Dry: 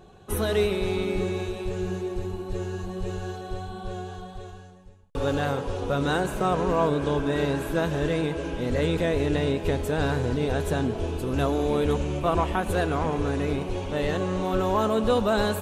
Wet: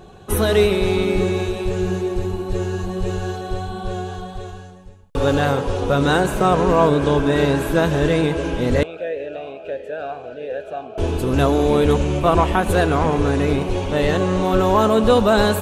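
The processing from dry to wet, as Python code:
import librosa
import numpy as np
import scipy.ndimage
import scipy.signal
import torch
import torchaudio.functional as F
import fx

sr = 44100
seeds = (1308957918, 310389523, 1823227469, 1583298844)

y = fx.vowel_sweep(x, sr, vowels='a-e', hz=1.5, at=(8.83, 10.98))
y = y * librosa.db_to_amplitude(8.0)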